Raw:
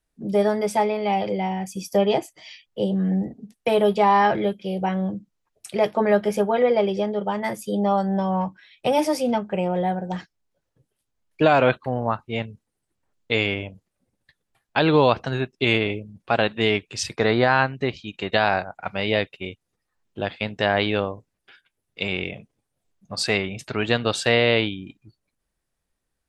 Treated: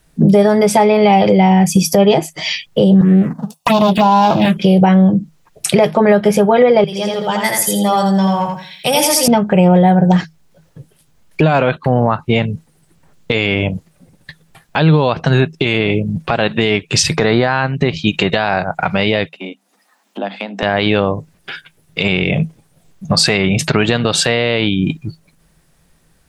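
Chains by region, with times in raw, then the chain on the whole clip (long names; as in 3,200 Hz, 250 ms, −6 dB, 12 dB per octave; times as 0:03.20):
0:03.01–0:04.57: lower of the sound and its delayed copy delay 1.1 ms + high-pass filter 200 Hz + phaser swept by the level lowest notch 260 Hz, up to 1,900 Hz, full sweep at −18.5 dBFS
0:06.84–0:09.28: first-order pre-emphasis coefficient 0.9 + repeating echo 83 ms, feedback 29%, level −3.5 dB
0:19.29–0:20.63: downward compressor 3 to 1, threshold −40 dBFS + Chebyshev high-pass with heavy ripple 190 Hz, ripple 9 dB + one half of a high-frequency compander encoder only
whole clip: parametric band 160 Hz +15 dB 0.26 octaves; downward compressor 6 to 1, threshold −30 dBFS; boost into a limiter +24 dB; level −1 dB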